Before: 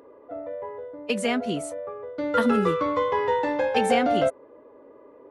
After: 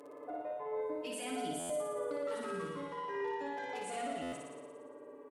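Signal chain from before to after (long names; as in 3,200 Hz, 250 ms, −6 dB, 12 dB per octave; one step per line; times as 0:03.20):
wavefolder on the positive side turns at −15 dBFS
source passing by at 0:01.98, 14 m/s, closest 3.5 metres
high-pass filter 160 Hz 12 dB per octave
parametric band 9,200 Hz +10.5 dB 1.1 octaves
comb filter 6.9 ms, depth 100%
brickwall limiter −48 dBFS, peak gain reduction 34.5 dB
on a send: flutter between parallel walls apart 9.9 metres, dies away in 1.3 s
on the sum: buffer that repeats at 0:01.59/0:04.22, samples 512, times 8
level +12.5 dB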